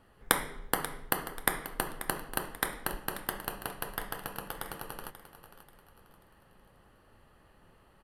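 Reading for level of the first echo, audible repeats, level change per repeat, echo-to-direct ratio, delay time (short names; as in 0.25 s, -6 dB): -13.0 dB, 3, -8.5 dB, -12.5 dB, 0.536 s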